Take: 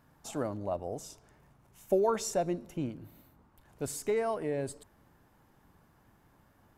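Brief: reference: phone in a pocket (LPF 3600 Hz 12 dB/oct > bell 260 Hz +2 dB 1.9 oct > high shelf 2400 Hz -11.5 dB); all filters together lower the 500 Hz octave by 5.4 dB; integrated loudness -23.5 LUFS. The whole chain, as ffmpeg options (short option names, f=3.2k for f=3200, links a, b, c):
-af "lowpass=3.6k,equalizer=f=260:t=o:w=1.9:g=2,equalizer=f=500:t=o:g=-8,highshelf=f=2.4k:g=-11.5,volume=14.5dB"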